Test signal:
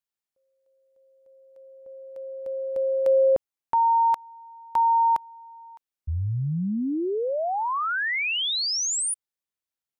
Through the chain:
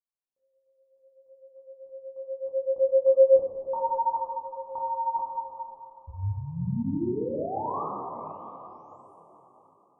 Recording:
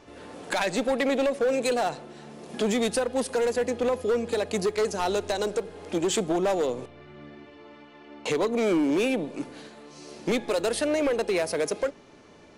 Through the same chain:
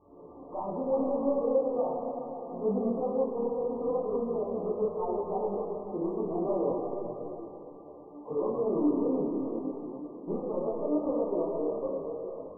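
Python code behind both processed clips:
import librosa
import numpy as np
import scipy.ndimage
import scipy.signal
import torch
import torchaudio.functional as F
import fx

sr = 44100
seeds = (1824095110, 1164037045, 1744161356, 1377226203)

y = scipy.signal.sosfilt(scipy.signal.ellip(6, 1.0, 50, 1200.0, 'lowpass', fs=sr, output='sos'), x)
y = fx.doubler(y, sr, ms=30.0, db=-3.5)
y = fx.rev_plate(y, sr, seeds[0], rt60_s=4.0, hf_ratio=0.9, predelay_ms=0, drr_db=-1.5)
y = fx.detune_double(y, sr, cents=25)
y = y * 10.0 ** (-5.5 / 20.0)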